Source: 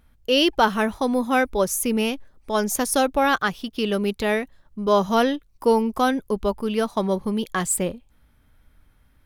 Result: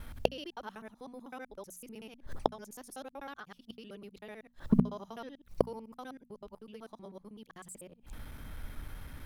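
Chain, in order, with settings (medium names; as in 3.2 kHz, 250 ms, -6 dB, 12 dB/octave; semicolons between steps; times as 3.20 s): time reversed locally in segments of 63 ms; inverted gate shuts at -23 dBFS, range -39 dB; hum notches 60/120/180/240 Hz; trim +14 dB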